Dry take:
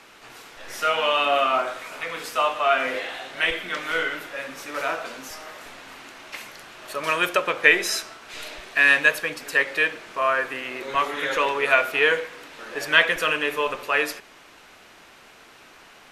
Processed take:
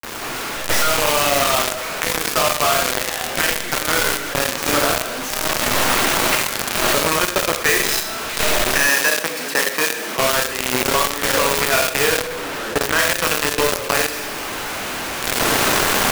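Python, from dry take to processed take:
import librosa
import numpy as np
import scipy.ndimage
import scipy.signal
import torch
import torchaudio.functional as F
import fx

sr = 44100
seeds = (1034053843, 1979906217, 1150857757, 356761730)

y = fx.halfwave_hold(x, sr)
y = fx.recorder_agc(y, sr, target_db=-10.0, rise_db_per_s=20.0, max_gain_db=30)
y = fx.high_shelf(y, sr, hz=4400.0, db=-10.0, at=(12.07, 12.99))
y = y + 10.0 ** (-17.5 / 20.0) * np.pad(y, (int(82 * sr / 1000.0), 0))[:len(y)]
y = fx.rev_schroeder(y, sr, rt60_s=0.54, comb_ms=28, drr_db=3.5)
y = fx.quant_companded(y, sr, bits=2)
y = fx.highpass(y, sr, hz=160.0, slope=24, at=(8.87, 10.19))
y = fx.env_flatten(y, sr, amount_pct=50)
y = y * librosa.db_to_amplitude(-12.5)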